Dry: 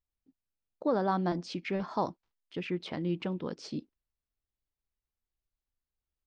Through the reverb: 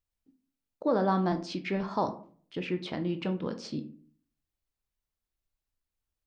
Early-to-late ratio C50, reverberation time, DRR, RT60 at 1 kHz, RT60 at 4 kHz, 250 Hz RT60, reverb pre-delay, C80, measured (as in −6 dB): 13.5 dB, 0.50 s, 8.0 dB, 0.45 s, 0.25 s, 0.60 s, 17 ms, 18.5 dB